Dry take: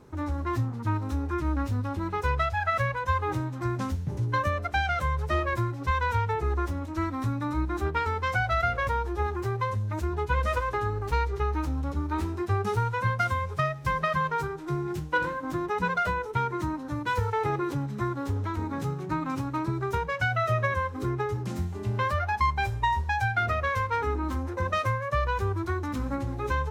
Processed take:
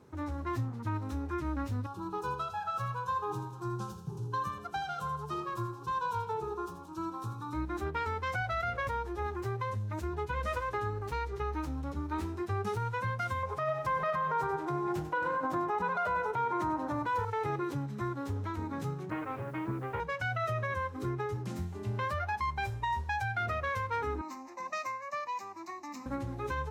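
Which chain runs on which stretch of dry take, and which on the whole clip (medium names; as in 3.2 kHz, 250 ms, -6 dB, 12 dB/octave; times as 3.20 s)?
1.86–7.53 s: static phaser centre 400 Hz, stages 8 + feedback delay 82 ms, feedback 47%, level -10 dB
13.43–17.25 s: peaking EQ 780 Hz +12.5 dB 1.8 oct + feedback delay 96 ms, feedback 31%, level -11 dB
19.10–20.00 s: comb filter that takes the minimum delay 9.2 ms + low-pass 2.6 kHz 24 dB/octave + word length cut 10-bit, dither none
24.21–26.06 s: high-pass 260 Hz 24 dB/octave + peaking EQ 7.4 kHz +8 dB 0.79 oct + static phaser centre 2.2 kHz, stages 8
whole clip: high-pass 76 Hz; peak limiter -19.5 dBFS; trim -5 dB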